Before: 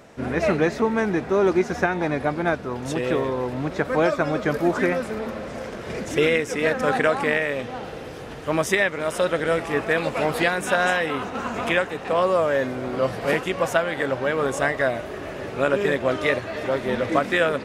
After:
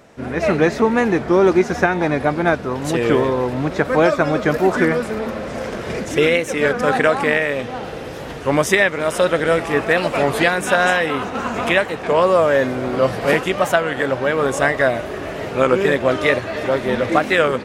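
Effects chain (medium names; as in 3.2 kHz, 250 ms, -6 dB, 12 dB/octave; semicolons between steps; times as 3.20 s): level rider gain up to 8 dB; warped record 33 1/3 rpm, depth 160 cents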